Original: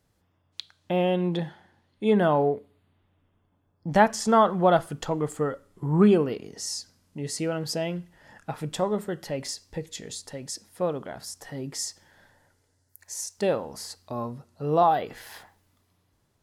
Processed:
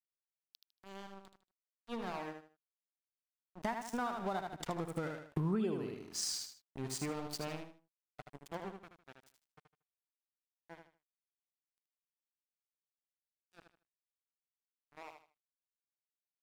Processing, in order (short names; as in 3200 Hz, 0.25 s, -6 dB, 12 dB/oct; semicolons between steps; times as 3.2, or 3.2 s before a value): Doppler pass-by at 5.68, 27 m/s, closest 2.9 m; high shelf 10000 Hz +3.5 dB; crossover distortion -54.5 dBFS; on a send: feedback echo 77 ms, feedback 27%, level -6.5 dB; on the sum: compressor 10:1, threshold -51 dBFS, peak gain reduction 34 dB; bell 520 Hz -5.5 dB 0.35 oct; gain +18 dB